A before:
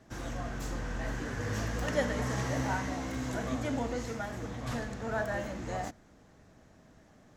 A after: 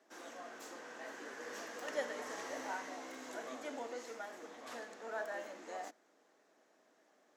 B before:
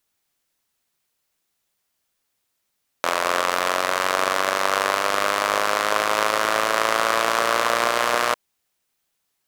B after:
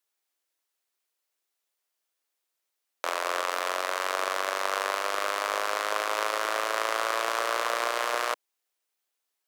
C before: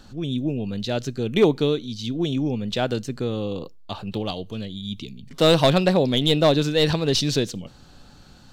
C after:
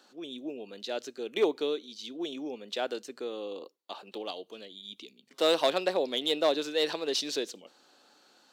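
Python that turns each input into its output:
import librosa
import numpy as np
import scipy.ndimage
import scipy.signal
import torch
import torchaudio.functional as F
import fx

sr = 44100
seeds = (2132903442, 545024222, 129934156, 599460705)

y = scipy.signal.sosfilt(scipy.signal.butter(4, 330.0, 'highpass', fs=sr, output='sos'), x)
y = y * 10.0 ** (-7.5 / 20.0)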